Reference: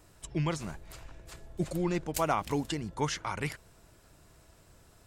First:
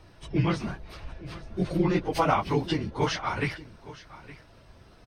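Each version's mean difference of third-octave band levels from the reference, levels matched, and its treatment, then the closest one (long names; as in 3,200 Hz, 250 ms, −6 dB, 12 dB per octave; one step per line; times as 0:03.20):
5.0 dB: random phases in long frames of 50 ms
Savitzky-Golay smoothing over 15 samples
single-tap delay 866 ms −18 dB
level +6 dB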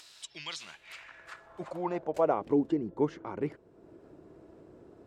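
9.5 dB: band-pass filter sweep 4,000 Hz → 350 Hz, 0:00.49–0:02.54
in parallel at −0.5 dB: upward compression, threshold −47 dBFS
on the sum: level +3.5 dB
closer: first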